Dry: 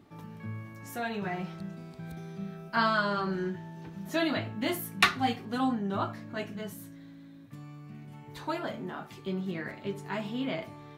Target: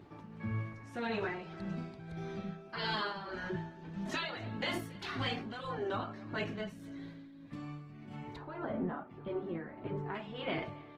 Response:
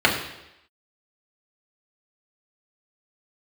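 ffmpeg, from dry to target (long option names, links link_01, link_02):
-af "asetnsamples=nb_out_samples=441:pad=0,asendcmd='8.36 lowpass f 1300;10.15 lowpass f 3100',lowpass=4900,afftfilt=real='re*lt(hypot(re,im),0.158)':imag='im*lt(hypot(re,im),0.158)':win_size=1024:overlap=0.75,acontrast=40,alimiter=limit=-24dB:level=0:latency=1:release=58,flanger=delay=1.8:depth=2.4:regen=-48:speed=1.4:shape=triangular,tremolo=f=1.7:d=0.68,aecho=1:1:278|556:0.0794|0.023,volume=3dB" -ar 48000 -c:a libopus -b:a 20k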